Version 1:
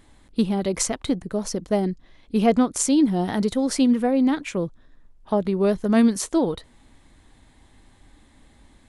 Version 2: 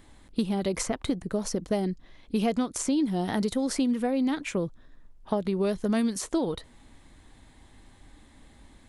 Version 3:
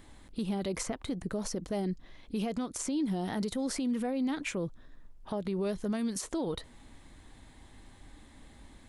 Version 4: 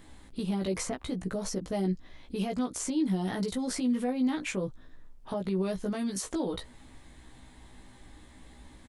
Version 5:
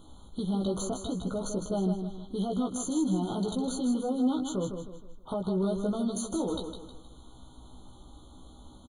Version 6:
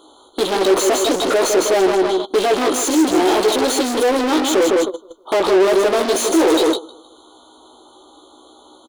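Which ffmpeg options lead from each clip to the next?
ffmpeg -i in.wav -filter_complex "[0:a]acrossover=split=2400|6400[link_01][link_02][link_03];[link_01]acompressor=threshold=-24dB:ratio=4[link_04];[link_02]acompressor=threshold=-40dB:ratio=4[link_05];[link_03]acompressor=threshold=-36dB:ratio=4[link_06];[link_04][link_05][link_06]amix=inputs=3:normalize=0" out.wav
ffmpeg -i in.wav -af "alimiter=level_in=1dB:limit=-24dB:level=0:latency=1:release=88,volume=-1dB" out.wav
ffmpeg -i in.wav -filter_complex "[0:a]asplit=2[link_01][link_02];[link_02]adelay=16,volume=-3dB[link_03];[link_01][link_03]amix=inputs=2:normalize=0" out.wav
ffmpeg -i in.wav -filter_complex "[0:a]asplit=2[link_01][link_02];[link_02]asoftclip=type=hard:threshold=-29dB,volume=-7.5dB[link_03];[link_01][link_03]amix=inputs=2:normalize=0,aecho=1:1:157|314|471|628:0.447|0.17|0.0645|0.0245,afftfilt=real='re*eq(mod(floor(b*sr/1024/1500),2),0)':imag='im*eq(mod(floor(b*sr/1024/1500),2),0)':win_size=1024:overlap=0.75,volume=-2dB" out.wav
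ffmpeg -i in.wav -filter_complex "[0:a]agate=range=-25dB:threshold=-38dB:ratio=16:detection=peak,asplit=2[link_01][link_02];[link_02]highpass=frequency=720:poles=1,volume=37dB,asoftclip=type=tanh:threshold=-18dB[link_03];[link_01][link_03]amix=inputs=2:normalize=0,lowpass=frequency=5600:poles=1,volume=-6dB,lowshelf=frequency=250:width_type=q:width=3:gain=-11,volume=7dB" out.wav

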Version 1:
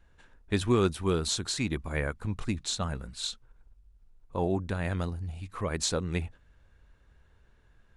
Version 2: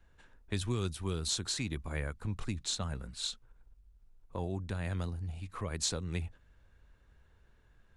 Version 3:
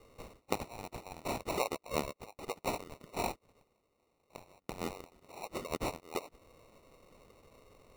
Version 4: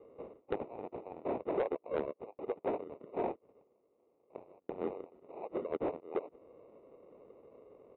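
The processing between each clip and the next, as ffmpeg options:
ffmpeg -i in.wav -filter_complex "[0:a]acrossover=split=140|3000[link_01][link_02][link_03];[link_02]acompressor=threshold=-36dB:ratio=3[link_04];[link_01][link_04][link_03]amix=inputs=3:normalize=0,volume=-2.5dB" out.wav
ffmpeg -i in.wav -af "acompressor=threshold=-44dB:ratio=5,highpass=frequency=2100:width_type=q:width=9.5,acrusher=samples=27:mix=1:aa=0.000001,volume=8.5dB" out.wav
ffmpeg -i in.wav -af "bandpass=frequency=420:width_type=q:width=1.7:csg=0,aresample=8000,asoftclip=type=tanh:threshold=-32dB,aresample=44100,volume=7.5dB" out.wav

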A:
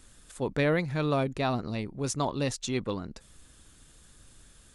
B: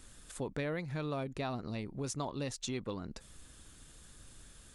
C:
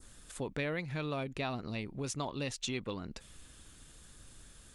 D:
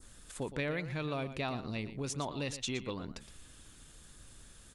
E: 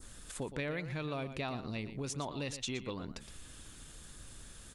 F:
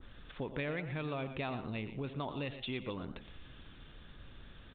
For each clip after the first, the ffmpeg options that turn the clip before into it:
ffmpeg -i in.wav -af "acompressor=threshold=-37dB:ratio=3" out.wav
ffmpeg -i in.wav -af "adynamicequalizer=threshold=0.00126:dfrequency=2700:dqfactor=1.3:tfrequency=2700:tqfactor=1.3:attack=5:release=100:ratio=0.375:range=3.5:mode=boostabove:tftype=bell" out.wav
ffmpeg -i in.wav -af "aecho=1:1:117:0.237" out.wav
ffmpeg -i in.wav -af "acompressor=threshold=-49dB:ratio=1.5,volume=4dB" out.wav
ffmpeg -i in.wav -filter_complex "[0:a]asplit=4[link_01][link_02][link_03][link_04];[link_02]adelay=89,afreqshift=120,volume=-17dB[link_05];[link_03]adelay=178,afreqshift=240,volume=-25.9dB[link_06];[link_04]adelay=267,afreqshift=360,volume=-34.7dB[link_07];[link_01][link_05][link_06][link_07]amix=inputs=4:normalize=0,aresample=8000,aresample=44100" out.wav

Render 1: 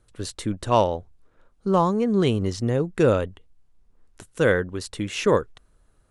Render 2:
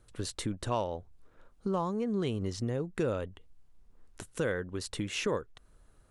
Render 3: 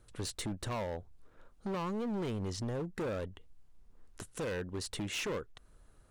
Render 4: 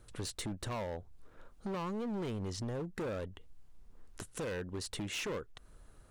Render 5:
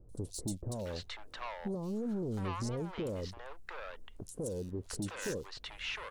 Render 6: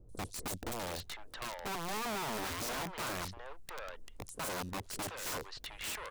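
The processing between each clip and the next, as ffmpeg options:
ffmpeg -i in.wav -af "acompressor=threshold=-34dB:ratio=2.5" out.wav
ffmpeg -i in.wav -af "asoftclip=type=hard:threshold=-33dB" out.wav
ffmpeg -i in.wav -af "acompressor=threshold=-49dB:ratio=1.5,volume=3.5dB" out.wav
ffmpeg -i in.wav -filter_complex "[0:a]acrossover=split=680|4800[link_01][link_02][link_03];[link_03]adelay=90[link_04];[link_02]adelay=710[link_05];[link_01][link_05][link_04]amix=inputs=3:normalize=0,volume=2dB" out.wav
ffmpeg -i in.wav -af "aeval=exprs='(mod(50.1*val(0)+1,2)-1)/50.1':channel_layout=same" out.wav

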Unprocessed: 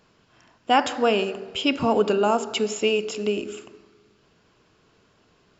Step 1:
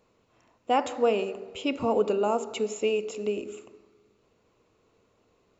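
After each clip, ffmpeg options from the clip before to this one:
ffmpeg -i in.wav -af "equalizer=frequency=160:width_type=o:width=0.33:gain=-8,equalizer=frequency=500:width_type=o:width=0.33:gain=6,equalizer=frequency=1600:width_type=o:width=0.33:gain=-10,equalizer=frequency=3150:width_type=o:width=0.33:gain=-7,equalizer=frequency=5000:width_type=o:width=0.33:gain=-9,volume=-5.5dB" out.wav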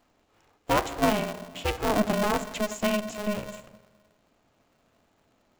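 ffmpeg -i in.wav -af "aeval=exprs='val(0)*sgn(sin(2*PI*210*n/s))':channel_layout=same" out.wav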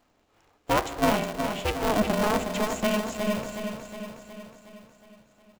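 ffmpeg -i in.wav -af "aecho=1:1:365|730|1095|1460|1825|2190|2555:0.447|0.255|0.145|0.0827|0.0472|0.0269|0.0153" out.wav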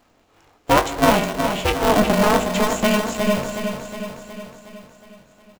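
ffmpeg -i in.wav -filter_complex "[0:a]asplit=2[link_01][link_02];[link_02]adelay=21,volume=-8.5dB[link_03];[link_01][link_03]amix=inputs=2:normalize=0,volume=7.5dB" out.wav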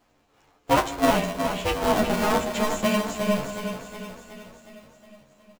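ffmpeg -i in.wav -filter_complex "[0:a]asplit=2[link_01][link_02];[link_02]adelay=10.7,afreqshift=-0.38[link_03];[link_01][link_03]amix=inputs=2:normalize=1,volume=-2.5dB" out.wav

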